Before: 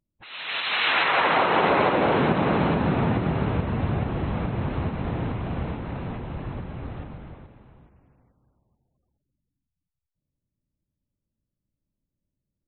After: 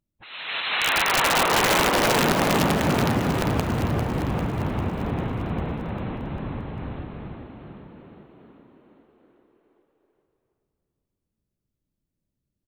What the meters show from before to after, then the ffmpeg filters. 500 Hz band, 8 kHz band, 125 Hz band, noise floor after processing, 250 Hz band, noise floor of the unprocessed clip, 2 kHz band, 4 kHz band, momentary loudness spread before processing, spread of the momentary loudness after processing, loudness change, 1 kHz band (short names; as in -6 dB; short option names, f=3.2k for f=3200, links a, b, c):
0.0 dB, n/a, 0.0 dB, -83 dBFS, +1.0 dB, -85 dBFS, +1.5 dB, +4.0 dB, 15 LU, 17 LU, +1.0 dB, 0.0 dB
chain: -filter_complex "[0:a]aeval=exprs='(mod(4.47*val(0)+1,2)-1)/4.47':c=same,asplit=9[a][b][c][d][e][f][g][h][i];[b]adelay=398,afreqshift=39,volume=-8dB[j];[c]adelay=796,afreqshift=78,volume=-12.3dB[k];[d]adelay=1194,afreqshift=117,volume=-16.6dB[l];[e]adelay=1592,afreqshift=156,volume=-20.9dB[m];[f]adelay=1990,afreqshift=195,volume=-25.2dB[n];[g]adelay=2388,afreqshift=234,volume=-29.5dB[o];[h]adelay=2786,afreqshift=273,volume=-33.8dB[p];[i]adelay=3184,afreqshift=312,volume=-38.1dB[q];[a][j][k][l][m][n][o][p][q]amix=inputs=9:normalize=0"